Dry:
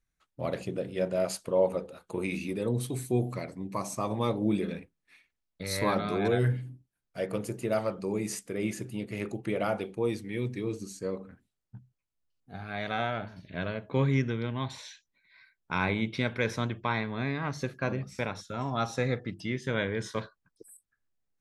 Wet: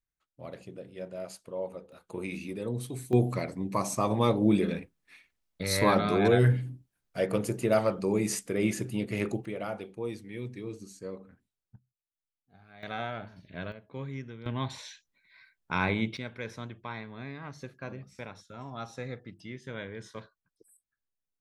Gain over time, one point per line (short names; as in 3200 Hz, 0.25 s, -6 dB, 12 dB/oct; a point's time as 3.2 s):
-10.5 dB
from 1.92 s -4 dB
from 3.13 s +4 dB
from 9.45 s -6 dB
from 11.76 s -17 dB
from 12.83 s -4.5 dB
from 13.72 s -12.5 dB
from 14.46 s +0.5 dB
from 16.17 s -9.5 dB